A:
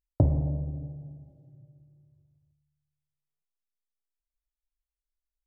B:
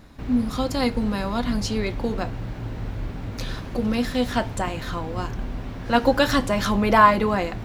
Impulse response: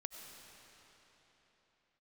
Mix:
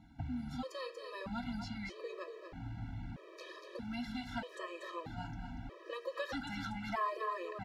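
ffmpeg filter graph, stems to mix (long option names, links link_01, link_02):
-filter_complex "[0:a]volume=-8.5dB[link_01];[1:a]highpass=frequency=82:poles=1,aemphasis=mode=reproduction:type=50kf,volume=-5dB,asplit=2[link_02][link_03];[link_03]volume=-7.5dB,aecho=0:1:237:1[link_04];[link_01][link_02][link_04]amix=inputs=3:normalize=0,acrossover=split=950|4800[link_05][link_06][link_07];[link_05]acompressor=threshold=-35dB:ratio=4[link_08];[link_06]acompressor=threshold=-33dB:ratio=4[link_09];[link_07]acompressor=threshold=-52dB:ratio=4[link_10];[link_08][link_09][link_10]amix=inputs=3:normalize=0,flanger=delay=0.3:depth=7:regen=-65:speed=0.67:shape=sinusoidal,afftfilt=real='re*gt(sin(2*PI*0.79*pts/sr)*(1-2*mod(floor(b*sr/1024/330),2)),0)':imag='im*gt(sin(2*PI*0.79*pts/sr)*(1-2*mod(floor(b*sr/1024/330),2)),0)':win_size=1024:overlap=0.75"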